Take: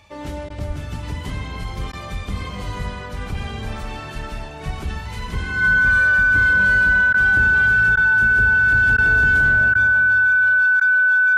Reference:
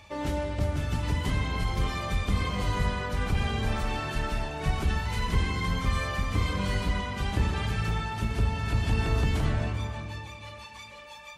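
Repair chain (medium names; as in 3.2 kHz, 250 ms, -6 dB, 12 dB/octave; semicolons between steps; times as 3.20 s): band-stop 1.5 kHz, Q 30; de-plosive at 0.67 s; interpolate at 0.49/1.92/7.13/7.96/8.97/9.74/10.80 s, 10 ms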